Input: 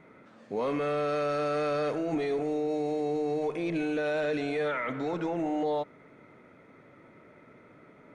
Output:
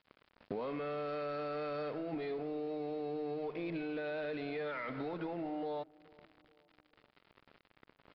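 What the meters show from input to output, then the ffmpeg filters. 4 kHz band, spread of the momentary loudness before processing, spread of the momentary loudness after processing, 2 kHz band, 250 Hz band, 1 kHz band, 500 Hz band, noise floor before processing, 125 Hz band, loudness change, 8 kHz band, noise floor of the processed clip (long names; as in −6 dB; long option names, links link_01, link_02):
−8.5 dB, 3 LU, 2 LU, −9.0 dB, −9.0 dB, −9.5 dB, −9.5 dB, −56 dBFS, −8.5 dB, −9.5 dB, can't be measured, −75 dBFS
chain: -filter_complex "[0:a]aeval=exprs='sgn(val(0))*max(abs(val(0))-0.00355,0)':channel_layout=same,acompressor=threshold=-43dB:ratio=8,asplit=2[link_01][link_02];[link_02]adelay=427,lowpass=frequency=1000:poles=1,volume=-23.5dB,asplit=2[link_03][link_04];[link_04]adelay=427,lowpass=frequency=1000:poles=1,volume=0.49,asplit=2[link_05][link_06];[link_06]adelay=427,lowpass=frequency=1000:poles=1,volume=0.49[link_07];[link_01][link_03][link_05][link_07]amix=inputs=4:normalize=0,aresample=11025,aresample=44100,volume=6dB"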